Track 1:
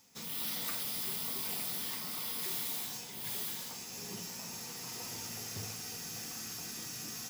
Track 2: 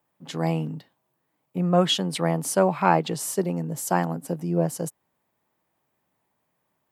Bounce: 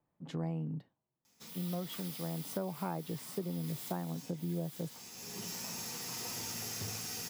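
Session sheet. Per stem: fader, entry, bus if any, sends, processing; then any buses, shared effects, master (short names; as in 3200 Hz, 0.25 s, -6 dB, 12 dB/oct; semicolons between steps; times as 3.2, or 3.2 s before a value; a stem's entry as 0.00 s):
+2.0 dB, 1.25 s, no send, auto duck -10 dB, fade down 1.65 s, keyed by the second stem
0.8 s -9 dB -> 1.1 s -19 dB -> 2.3 s -19 dB -> 2.52 s -11.5 dB, 0.00 s, no send, tilt -3 dB/oct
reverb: off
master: compressor 6:1, threshold -34 dBFS, peak gain reduction 11.5 dB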